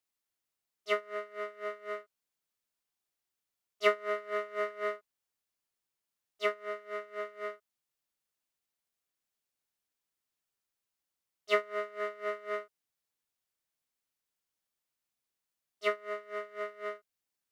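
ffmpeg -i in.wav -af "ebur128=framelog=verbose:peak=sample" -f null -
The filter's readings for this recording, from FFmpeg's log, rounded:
Integrated loudness:
  I:         -35.9 LUFS
  Threshold: -46.3 LUFS
Loudness range:
  LRA:         8.6 LU
  Threshold: -59.4 LUFS
  LRA low:   -45.1 LUFS
  LRA high:  -36.6 LUFS
Sample peak:
  Peak:      -12.5 dBFS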